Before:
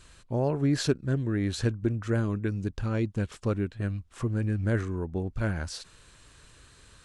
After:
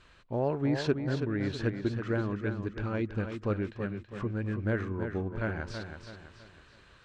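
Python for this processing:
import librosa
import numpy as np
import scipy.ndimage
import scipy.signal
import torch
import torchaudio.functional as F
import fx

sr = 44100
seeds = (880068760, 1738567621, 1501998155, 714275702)

p1 = scipy.signal.sosfilt(scipy.signal.butter(2, 3100.0, 'lowpass', fs=sr, output='sos'), x)
p2 = fx.low_shelf(p1, sr, hz=240.0, db=-7.5)
y = p2 + fx.echo_feedback(p2, sr, ms=327, feedback_pct=41, wet_db=-7.5, dry=0)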